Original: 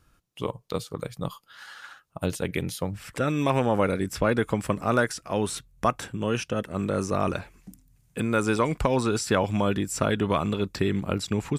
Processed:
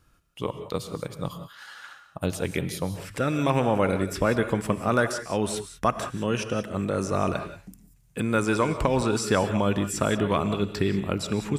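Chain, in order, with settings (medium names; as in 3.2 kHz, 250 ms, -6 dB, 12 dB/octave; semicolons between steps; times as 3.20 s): gated-style reverb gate 210 ms rising, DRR 9.5 dB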